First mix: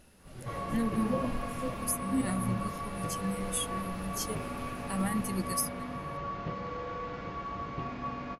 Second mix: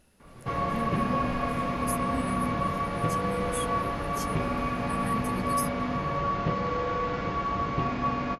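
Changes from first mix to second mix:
speech -4.0 dB; background +9.0 dB

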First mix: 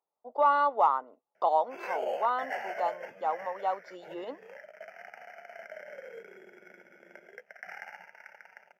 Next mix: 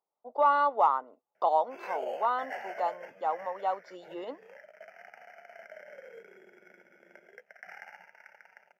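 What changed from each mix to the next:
background -3.5 dB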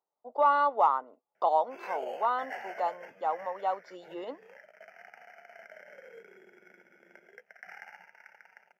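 background: add bell 590 Hz -5 dB 0.35 oct

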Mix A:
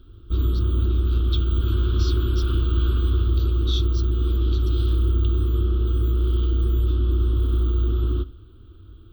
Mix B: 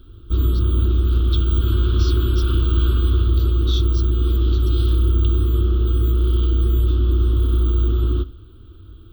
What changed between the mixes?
background +3.5 dB; master: add high shelf 6400 Hz +5 dB

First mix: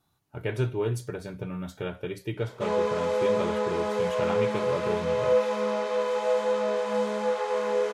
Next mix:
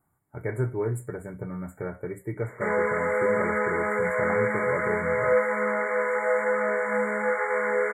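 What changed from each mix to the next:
background: add band shelf 1900 Hz +12.5 dB 1.3 oct; master: add brick-wall FIR band-stop 2300–6900 Hz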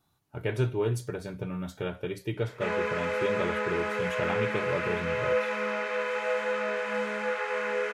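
background -5.0 dB; master: remove brick-wall FIR band-stop 2300–6900 Hz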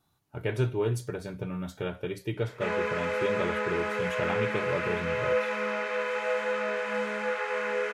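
none

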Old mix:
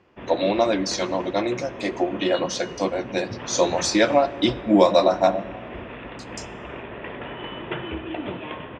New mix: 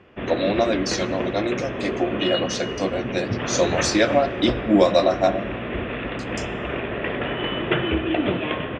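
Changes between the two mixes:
background +9.0 dB; master: add bell 930 Hz -8 dB 0.32 oct

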